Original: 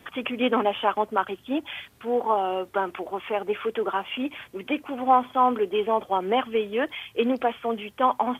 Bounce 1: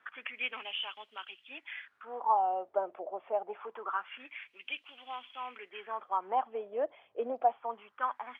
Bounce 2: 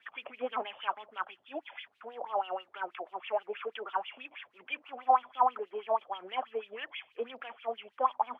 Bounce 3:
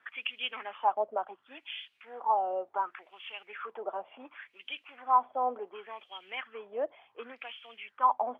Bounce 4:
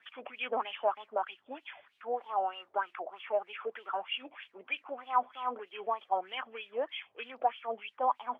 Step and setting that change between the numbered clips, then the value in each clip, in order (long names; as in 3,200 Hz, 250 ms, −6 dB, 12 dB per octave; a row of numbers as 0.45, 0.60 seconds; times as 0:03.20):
LFO wah, speed: 0.25, 6.2, 0.69, 3.2 Hertz